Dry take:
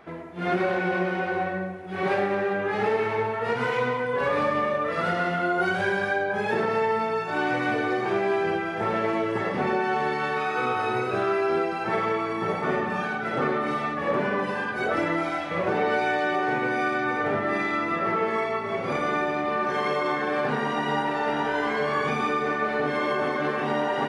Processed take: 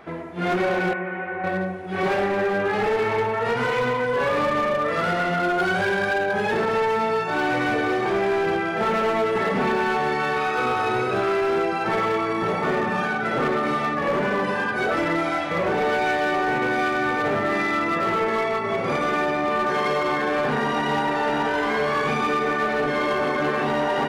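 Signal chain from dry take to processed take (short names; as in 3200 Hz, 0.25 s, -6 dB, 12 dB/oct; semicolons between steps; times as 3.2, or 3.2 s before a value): 8.76–9.97 comb 4.6 ms, depth 55%; in parallel at -2.5 dB: limiter -20 dBFS, peak gain reduction 8.5 dB; 0.93–1.44 on the sum: ladder low-pass 2500 Hz, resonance 40%; hard clip -17.5 dBFS, distortion -16 dB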